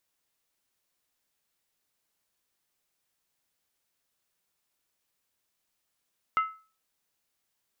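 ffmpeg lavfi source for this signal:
-f lavfi -i "aevalsrc='0.112*pow(10,-3*t/0.36)*sin(2*PI*1300*t)+0.0335*pow(10,-3*t/0.285)*sin(2*PI*2072.2*t)+0.01*pow(10,-3*t/0.246)*sin(2*PI*2776.8*t)+0.00299*pow(10,-3*t/0.238)*sin(2*PI*2984.8*t)+0.000891*pow(10,-3*t/0.221)*sin(2*PI*3448.9*t)':d=0.63:s=44100"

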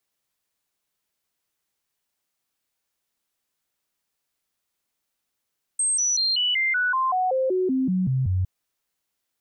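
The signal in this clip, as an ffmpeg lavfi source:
-f lavfi -i "aevalsrc='0.106*clip(min(mod(t,0.19),0.19-mod(t,0.19))/0.005,0,1)*sin(2*PI*8370*pow(2,-floor(t/0.19)/2)*mod(t,0.19))':d=2.66:s=44100"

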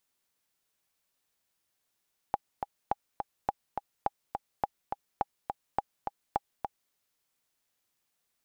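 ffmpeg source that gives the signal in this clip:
-f lavfi -i "aevalsrc='pow(10,(-13.5-5.5*gte(mod(t,2*60/209),60/209))/20)*sin(2*PI*814*mod(t,60/209))*exp(-6.91*mod(t,60/209)/0.03)':d=4.59:s=44100"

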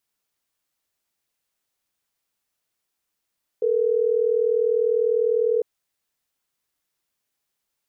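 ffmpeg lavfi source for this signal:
-f lavfi -i "aevalsrc='0.0944*(sin(2*PI*440*t)+sin(2*PI*480*t))*clip(min(mod(t,6),2-mod(t,6))/0.005,0,1)':d=3.12:s=44100"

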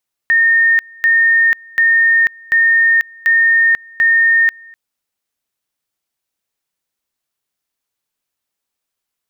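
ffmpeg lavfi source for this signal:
-f lavfi -i "aevalsrc='pow(10,(-8-27.5*gte(mod(t,0.74),0.49))/20)*sin(2*PI*1830*t)':d=4.44:s=44100"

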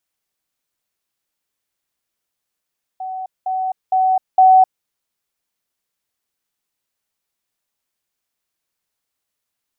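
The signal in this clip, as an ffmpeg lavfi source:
-f lavfi -i "aevalsrc='pow(10,(-24+6*floor(t/0.46))/20)*sin(2*PI*752*t)*clip(min(mod(t,0.46),0.26-mod(t,0.46))/0.005,0,1)':d=1.84:s=44100"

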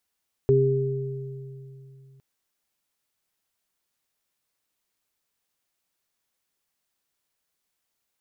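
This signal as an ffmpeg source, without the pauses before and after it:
-f lavfi -i "aevalsrc='0.106*pow(10,-3*t/3.31)*sin(2*PI*134*t)+0.0299*pow(10,-3*t/1.36)*sin(2*PI*268*t)+0.168*pow(10,-3*t/2.04)*sin(2*PI*402*t)':d=1.71:s=44100"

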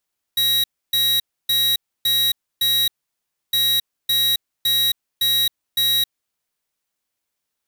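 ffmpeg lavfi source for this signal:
-f lavfi -i "aevalsrc='0.126*(2*lt(mod(3840*t,1),0.5)-1)*clip(min(mod(mod(t,3.16),0.56),0.27-mod(mod(t,3.16),0.56))/0.005,0,1)*lt(mod(t,3.16),2.8)':d=6.32:s=44100"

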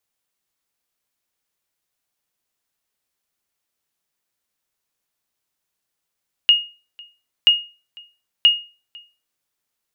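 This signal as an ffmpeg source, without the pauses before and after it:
-f lavfi -i "aevalsrc='0.562*(sin(2*PI*2860*mod(t,0.98))*exp(-6.91*mod(t,0.98)/0.33)+0.0422*sin(2*PI*2860*max(mod(t,0.98)-0.5,0))*exp(-6.91*max(mod(t,0.98)-0.5,0)/0.33))':d=2.94:s=44100"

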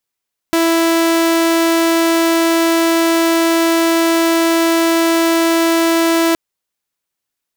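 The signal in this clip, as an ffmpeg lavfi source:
-f lavfi -i "aevalsrc='0.376*(2*mod(331*t,1)-1)':d=5.82:s=44100"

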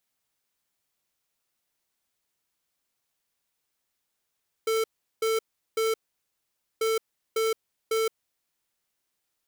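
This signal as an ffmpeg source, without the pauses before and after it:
-f lavfi -i "aevalsrc='0.0562*(2*lt(mod(445*t,1),0.5)-1)*clip(min(mod(mod(t,2.14),0.55),0.17-mod(mod(t,2.14),0.55))/0.005,0,1)*lt(mod(t,2.14),1.65)':d=4.28:s=44100"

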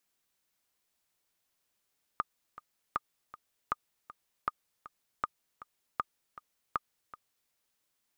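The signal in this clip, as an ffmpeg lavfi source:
-f lavfi -i "aevalsrc='pow(10,(-16-17*gte(mod(t,2*60/158),60/158))/20)*sin(2*PI*1220*mod(t,60/158))*exp(-6.91*mod(t,60/158)/0.03)':d=5.31:s=44100"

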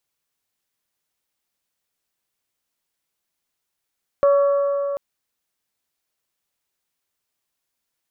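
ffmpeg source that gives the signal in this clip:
-f lavfi -i "aevalsrc='0.266*pow(10,-3*t/3.93)*sin(2*PI*564*t)+0.0794*pow(10,-3*t/3.192)*sin(2*PI*1128*t)+0.0237*pow(10,-3*t/3.022)*sin(2*PI*1353.6*t)+0.00708*pow(10,-3*t/2.827)*sin(2*PI*1692*t)':d=0.74:s=44100"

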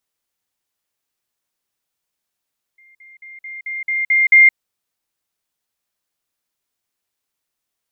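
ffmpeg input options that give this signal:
-f lavfi -i "aevalsrc='pow(10,(-47+6*floor(t/0.22))/20)*sin(2*PI*2110*t)*clip(min(mod(t,0.22),0.17-mod(t,0.22))/0.005,0,1)':d=1.76:s=44100"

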